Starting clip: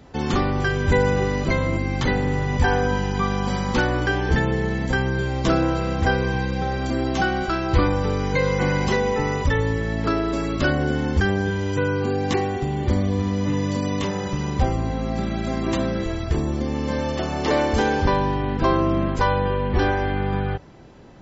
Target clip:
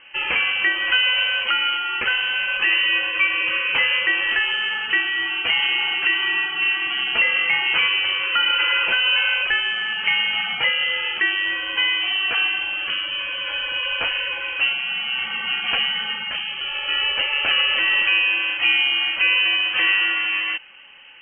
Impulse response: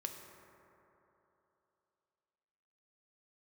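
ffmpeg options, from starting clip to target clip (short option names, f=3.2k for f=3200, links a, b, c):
-af "highpass=f=550:w=0.5412,highpass=f=550:w=1.3066,alimiter=limit=-17.5dB:level=0:latency=1:release=144,lowpass=f=3k:t=q:w=0.5098,lowpass=f=3k:t=q:w=0.6013,lowpass=f=3k:t=q:w=0.9,lowpass=f=3k:t=q:w=2.563,afreqshift=-3500,volume=8.5dB"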